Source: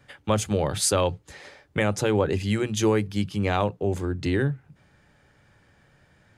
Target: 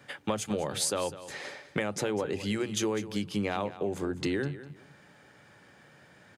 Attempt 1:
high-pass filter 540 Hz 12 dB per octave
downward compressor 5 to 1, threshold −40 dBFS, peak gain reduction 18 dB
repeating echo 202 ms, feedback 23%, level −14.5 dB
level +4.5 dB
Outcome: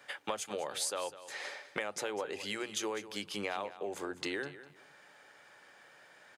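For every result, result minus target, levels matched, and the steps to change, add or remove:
125 Hz band −12.0 dB; downward compressor: peak gain reduction +4 dB
change: high-pass filter 170 Hz 12 dB per octave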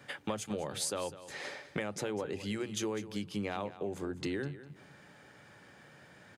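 downward compressor: peak gain reduction +5.5 dB
change: downward compressor 5 to 1, threshold −33 dBFS, peak gain reduction 14 dB

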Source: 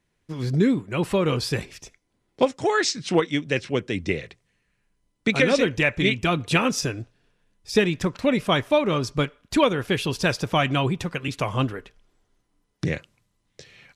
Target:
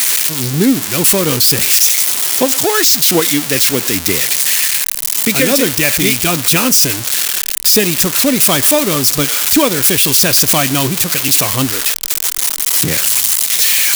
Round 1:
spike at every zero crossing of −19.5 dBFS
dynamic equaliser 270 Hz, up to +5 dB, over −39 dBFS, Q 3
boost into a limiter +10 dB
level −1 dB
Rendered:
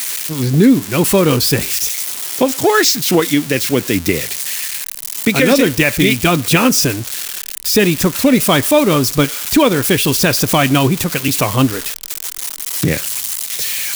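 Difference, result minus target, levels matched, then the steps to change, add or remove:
spike at every zero crossing: distortion −12 dB
change: spike at every zero crossing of −7.5 dBFS

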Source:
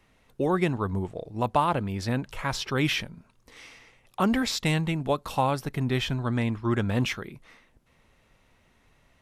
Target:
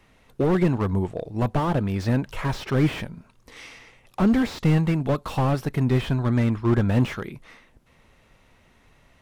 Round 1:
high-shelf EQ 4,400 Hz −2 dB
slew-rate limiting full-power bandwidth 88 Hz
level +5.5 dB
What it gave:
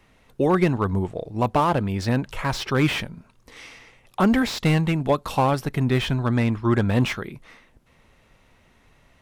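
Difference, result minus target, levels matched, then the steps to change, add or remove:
slew-rate limiting: distortion −8 dB
change: slew-rate limiting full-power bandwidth 30 Hz

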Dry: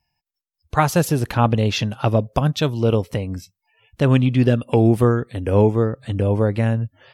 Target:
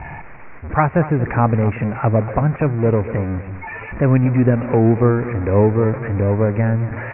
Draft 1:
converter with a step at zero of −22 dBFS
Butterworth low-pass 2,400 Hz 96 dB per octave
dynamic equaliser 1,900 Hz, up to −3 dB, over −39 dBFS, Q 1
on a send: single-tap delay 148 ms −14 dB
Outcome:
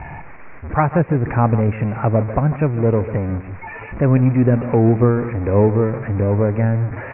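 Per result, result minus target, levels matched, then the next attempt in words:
echo 87 ms early; 2,000 Hz band −2.5 dB
converter with a step at zero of −22 dBFS
Butterworth low-pass 2,400 Hz 96 dB per octave
dynamic equaliser 1,900 Hz, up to −3 dB, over −39 dBFS, Q 1
on a send: single-tap delay 235 ms −14 dB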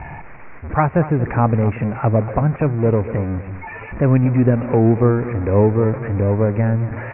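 2,000 Hz band −2.5 dB
converter with a step at zero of −22 dBFS
Butterworth low-pass 2,400 Hz 96 dB per octave
on a send: single-tap delay 235 ms −14 dB

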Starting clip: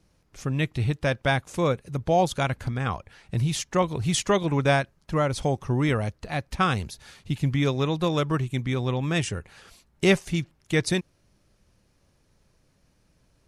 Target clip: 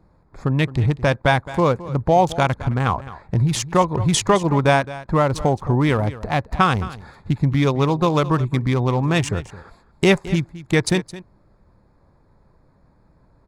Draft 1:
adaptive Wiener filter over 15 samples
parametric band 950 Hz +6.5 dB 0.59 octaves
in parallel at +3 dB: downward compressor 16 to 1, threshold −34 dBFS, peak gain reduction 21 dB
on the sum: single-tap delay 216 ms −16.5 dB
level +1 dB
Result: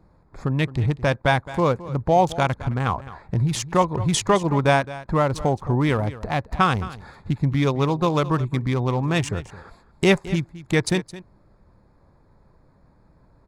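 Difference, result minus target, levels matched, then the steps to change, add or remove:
downward compressor: peak gain reduction +9 dB
change: downward compressor 16 to 1, threshold −24.5 dBFS, peak gain reduction 12 dB

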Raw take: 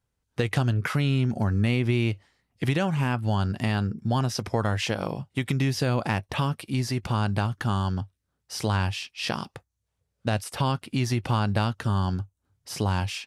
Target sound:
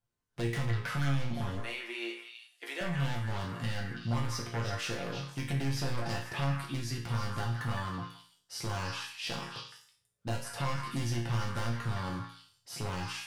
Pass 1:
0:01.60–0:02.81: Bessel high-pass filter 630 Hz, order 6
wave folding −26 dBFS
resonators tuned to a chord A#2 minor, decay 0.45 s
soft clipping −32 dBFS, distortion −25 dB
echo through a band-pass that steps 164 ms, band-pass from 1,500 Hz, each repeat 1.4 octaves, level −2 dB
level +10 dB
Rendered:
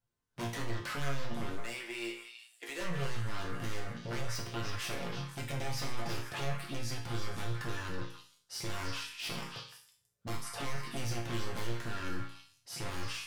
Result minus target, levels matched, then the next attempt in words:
wave folding: distortion +13 dB
0:01.60–0:02.81: Bessel high-pass filter 630 Hz, order 6
wave folding −20 dBFS
resonators tuned to a chord A#2 minor, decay 0.45 s
soft clipping −32 dBFS, distortion −22 dB
echo through a band-pass that steps 164 ms, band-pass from 1,500 Hz, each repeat 1.4 octaves, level −2 dB
level +10 dB

